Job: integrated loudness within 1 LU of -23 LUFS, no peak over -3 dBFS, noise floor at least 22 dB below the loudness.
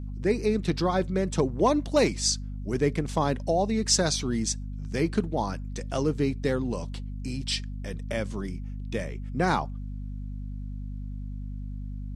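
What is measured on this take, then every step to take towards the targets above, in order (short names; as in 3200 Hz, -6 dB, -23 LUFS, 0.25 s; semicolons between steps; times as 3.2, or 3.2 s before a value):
hum 50 Hz; harmonics up to 250 Hz; hum level -32 dBFS; loudness -28.5 LUFS; peak -10.5 dBFS; loudness target -23.0 LUFS
-> de-hum 50 Hz, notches 5; gain +5.5 dB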